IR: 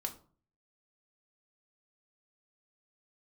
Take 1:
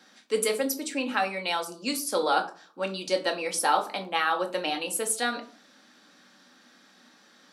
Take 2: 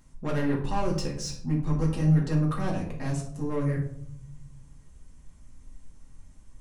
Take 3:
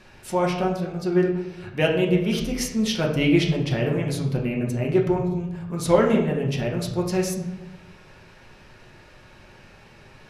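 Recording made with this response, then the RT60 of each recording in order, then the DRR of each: 1; 0.45, 0.65, 1.0 s; 3.0, -2.5, -1.5 dB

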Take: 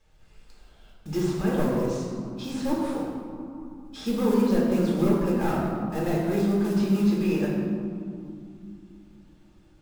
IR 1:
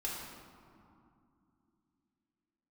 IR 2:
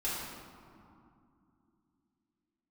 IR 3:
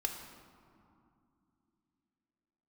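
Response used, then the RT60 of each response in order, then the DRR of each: 1; 2.7, 2.7, 2.7 s; -5.0, -9.5, 3.0 dB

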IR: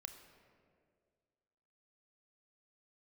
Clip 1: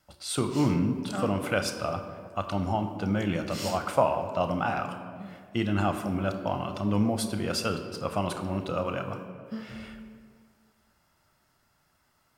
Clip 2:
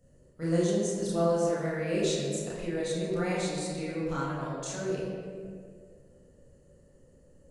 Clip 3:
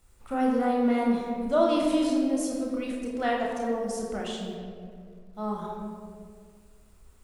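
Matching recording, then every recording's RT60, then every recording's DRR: 1; 2.0, 2.0, 2.0 s; 6.5, -8.0, -2.5 dB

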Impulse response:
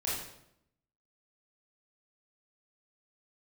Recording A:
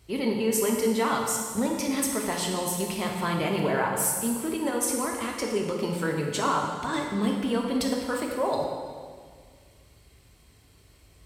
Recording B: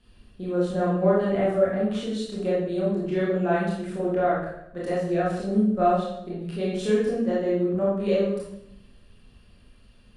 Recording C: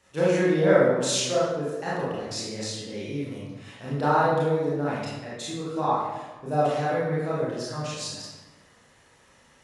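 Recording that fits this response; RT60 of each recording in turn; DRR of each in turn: B; 1.8, 0.75, 1.2 s; 0.0, -7.5, -8.5 dB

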